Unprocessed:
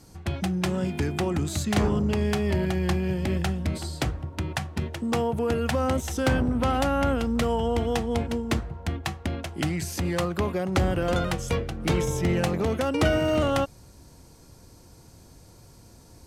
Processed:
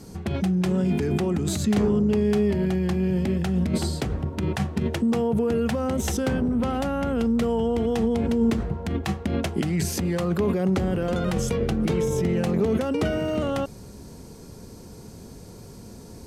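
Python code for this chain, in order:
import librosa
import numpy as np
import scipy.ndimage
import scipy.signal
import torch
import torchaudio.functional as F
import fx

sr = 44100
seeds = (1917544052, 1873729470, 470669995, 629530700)

p1 = fx.over_compress(x, sr, threshold_db=-31.0, ratio=-0.5)
p2 = x + (p1 * 10.0 ** (2.5 / 20.0))
p3 = fx.small_body(p2, sr, hz=(210.0, 410.0), ring_ms=35, db=10)
y = p3 * 10.0 ** (-6.5 / 20.0)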